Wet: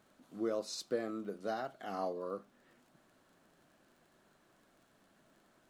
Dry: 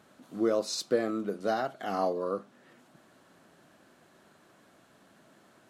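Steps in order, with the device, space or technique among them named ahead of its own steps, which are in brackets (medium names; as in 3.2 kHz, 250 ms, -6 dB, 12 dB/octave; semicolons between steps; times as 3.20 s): vinyl LP (crackle 30 per s -49 dBFS; pink noise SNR 39 dB); trim -8.5 dB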